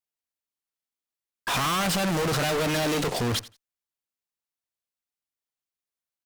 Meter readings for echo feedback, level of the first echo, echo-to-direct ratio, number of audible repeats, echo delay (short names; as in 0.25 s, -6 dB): 17%, -18.5 dB, -18.5 dB, 2, 87 ms